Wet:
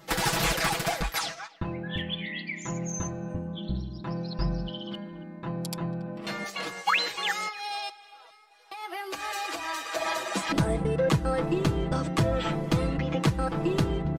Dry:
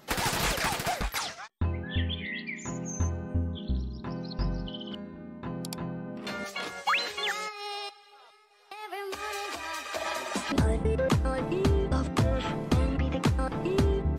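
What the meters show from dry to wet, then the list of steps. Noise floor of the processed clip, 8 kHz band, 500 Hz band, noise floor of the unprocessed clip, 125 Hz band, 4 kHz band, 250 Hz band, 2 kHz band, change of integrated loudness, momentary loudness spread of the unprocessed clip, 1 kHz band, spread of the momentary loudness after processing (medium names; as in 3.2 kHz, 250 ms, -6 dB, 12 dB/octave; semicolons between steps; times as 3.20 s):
-52 dBFS, +2.0 dB, +1.5 dB, -55 dBFS, 0.0 dB, +2.0 dB, +1.5 dB, +2.0 dB, +1.0 dB, 11 LU, +2.0 dB, 10 LU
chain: overload inside the chain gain 18 dB; comb 6.1 ms, depth 80%; speakerphone echo 280 ms, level -20 dB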